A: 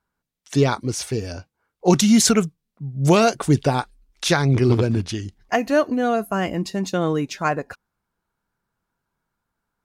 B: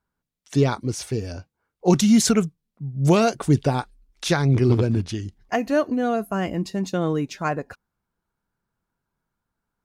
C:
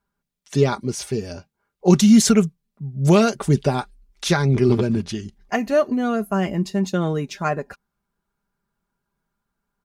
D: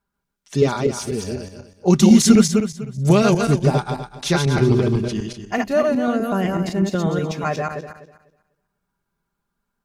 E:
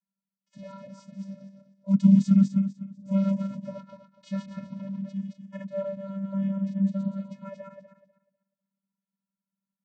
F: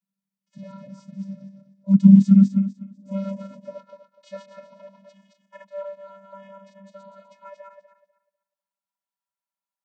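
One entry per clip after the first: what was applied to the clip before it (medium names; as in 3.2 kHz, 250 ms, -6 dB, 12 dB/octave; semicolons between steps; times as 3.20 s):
bass shelf 460 Hz +4.5 dB; trim -4.5 dB
comb 5 ms, depth 50%; trim +1 dB
backward echo that repeats 124 ms, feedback 45%, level -2.5 dB; trim -1 dB
vocoder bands 16, square 195 Hz; trim -8 dB
high-pass sweep 150 Hz -> 810 Hz, 1.71–5.28 s; trim -1 dB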